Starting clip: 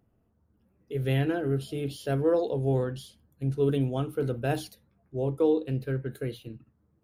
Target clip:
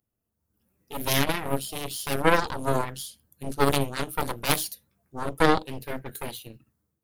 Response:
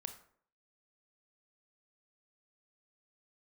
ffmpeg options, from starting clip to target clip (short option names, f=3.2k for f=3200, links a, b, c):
-af "dynaudnorm=f=210:g=5:m=12.5dB,aeval=exprs='0.75*(cos(1*acos(clip(val(0)/0.75,-1,1)))-cos(1*PI/2))+0.211*(cos(3*acos(clip(val(0)/0.75,-1,1)))-cos(3*PI/2))+0.168*(cos(4*acos(clip(val(0)/0.75,-1,1)))-cos(4*PI/2))+0.0531*(cos(7*acos(clip(val(0)/0.75,-1,1)))-cos(7*PI/2))':c=same,crystalizer=i=6.5:c=0,volume=-7dB"